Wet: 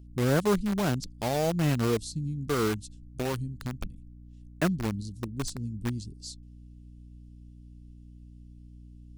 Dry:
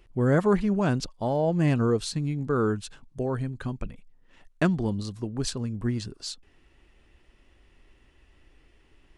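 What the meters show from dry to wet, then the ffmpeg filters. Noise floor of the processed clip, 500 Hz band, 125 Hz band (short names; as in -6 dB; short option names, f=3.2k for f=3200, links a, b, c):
-49 dBFS, -3.5 dB, -3.0 dB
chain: -filter_complex "[0:a]acrossover=split=320|4100[a][b][c];[b]acrusher=bits=4:mix=0:aa=0.000001[d];[a][d][c]amix=inputs=3:normalize=0,aeval=exprs='val(0)+0.00631*(sin(2*PI*60*n/s)+sin(2*PI*2*60*n/s)/2+sin(2*PI*3*60*n/s)/3+sin(2*PI*4*60*n/s)/4+sin(2*PI*5*60*n/s)/5)':c=same,volume=-3dB"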